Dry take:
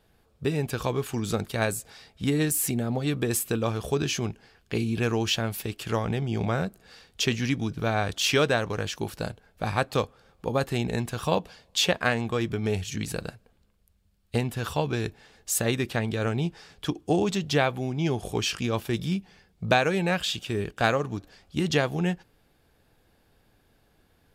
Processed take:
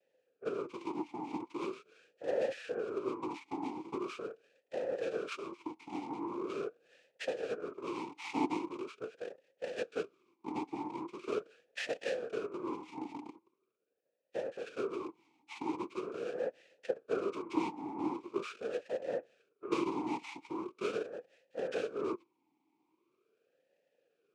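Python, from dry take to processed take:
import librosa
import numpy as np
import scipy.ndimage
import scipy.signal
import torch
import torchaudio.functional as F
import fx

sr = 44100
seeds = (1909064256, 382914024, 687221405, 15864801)

y = fx.noise_vocoder(x, sr, seeds[0], bands=2)
y = fx.vowel_sweep(y, sr, vowels='e-u', hz=0.42)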